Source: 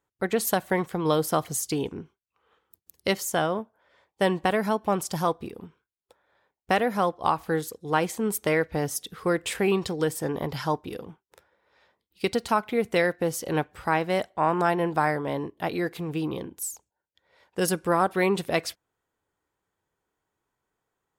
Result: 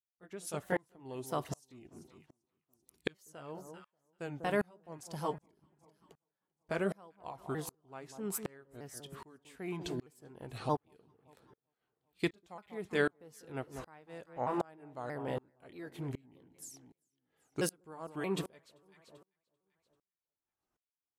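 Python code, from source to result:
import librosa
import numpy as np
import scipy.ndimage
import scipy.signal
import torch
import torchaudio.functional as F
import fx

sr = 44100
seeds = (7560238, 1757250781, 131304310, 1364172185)

y = fx.pitch_ramps(x, sr, semitones=-4.0, every_ms=629)
y = fx.echo_alternate(y, sr, ms=195, hz=1100.0, feedback_pct=58, wet_db=-14.0)
y = fx.tremolo_decay(y, sr, direction='swelling', hz=1.3, depth_db=33)
y = y * librosa.db_to_amplitude(-3.0)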